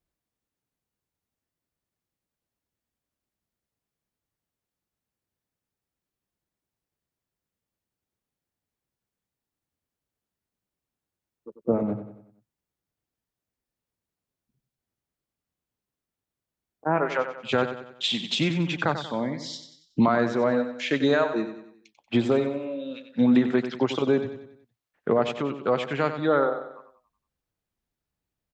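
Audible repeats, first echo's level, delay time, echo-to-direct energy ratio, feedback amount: 4, −10.0 dB, 93 ms, −9.0 dB, 45%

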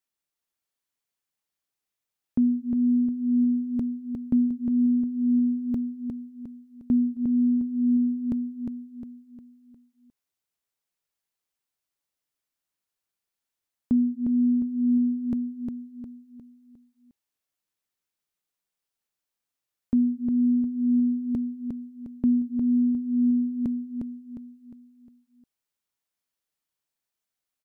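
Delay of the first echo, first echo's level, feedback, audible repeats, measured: 356 ms, −5.0 dB, 42%, 4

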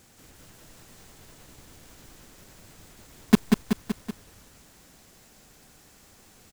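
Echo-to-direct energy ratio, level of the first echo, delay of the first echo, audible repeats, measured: −2.0 dB, −4.0 dB, 189 ms, 4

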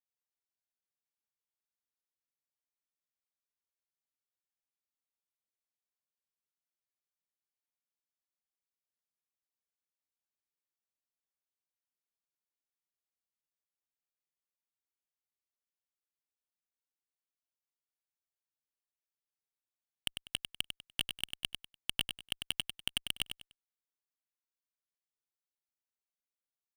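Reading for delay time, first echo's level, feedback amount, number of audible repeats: 98 ms, −7.0 dB, 26%, 3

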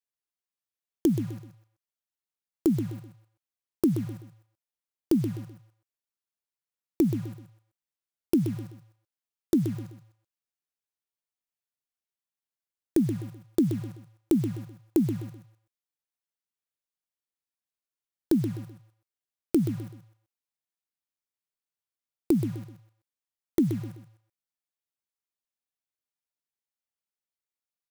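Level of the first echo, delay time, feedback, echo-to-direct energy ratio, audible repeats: −9.5 dB, 127 ms, 31%, −9.0 dB, 3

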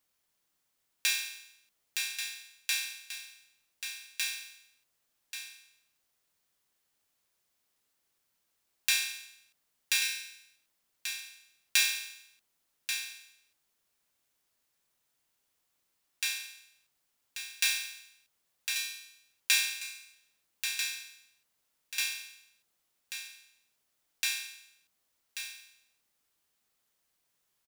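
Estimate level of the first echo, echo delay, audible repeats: −8.5 dB, 1,136 ms, 1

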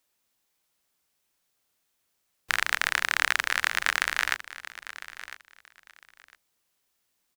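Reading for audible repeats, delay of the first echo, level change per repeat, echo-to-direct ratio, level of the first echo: 2, 1,004 ms, −14.0 dB, −15.0 dB, −15.0 dB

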